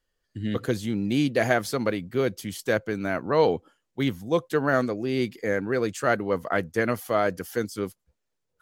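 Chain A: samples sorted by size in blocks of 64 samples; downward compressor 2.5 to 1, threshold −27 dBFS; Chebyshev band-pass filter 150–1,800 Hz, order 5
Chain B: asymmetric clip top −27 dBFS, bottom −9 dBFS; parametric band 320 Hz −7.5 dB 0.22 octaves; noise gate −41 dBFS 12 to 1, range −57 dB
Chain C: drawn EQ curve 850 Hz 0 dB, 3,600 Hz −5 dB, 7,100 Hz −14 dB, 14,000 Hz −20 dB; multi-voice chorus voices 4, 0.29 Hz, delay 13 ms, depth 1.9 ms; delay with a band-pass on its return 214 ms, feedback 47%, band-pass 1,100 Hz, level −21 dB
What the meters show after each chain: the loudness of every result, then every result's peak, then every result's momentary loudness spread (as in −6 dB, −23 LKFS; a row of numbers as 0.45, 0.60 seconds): −32.5, −28.5, −30.0 LKFS; −16.5, −9.0, −11.0 dBFS; 5, 8, 9 LU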